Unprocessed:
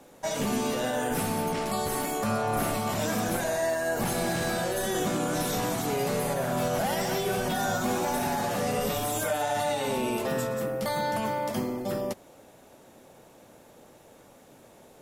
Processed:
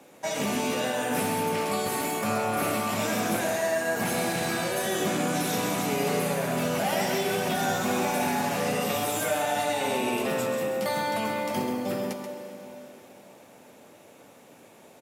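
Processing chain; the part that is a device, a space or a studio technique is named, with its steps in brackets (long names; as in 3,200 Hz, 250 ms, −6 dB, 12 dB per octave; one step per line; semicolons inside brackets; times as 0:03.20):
PA in a hall (high-pass filter 130 Hz 12 dB per octave; parametric band 2,400 Hz +5.5 dB 0.49 octaves; single-tap delay 133 ms −8 dB; convolution reverb RT60 3.9 s, pre-delay 8 ms, DRR 7.5 dB)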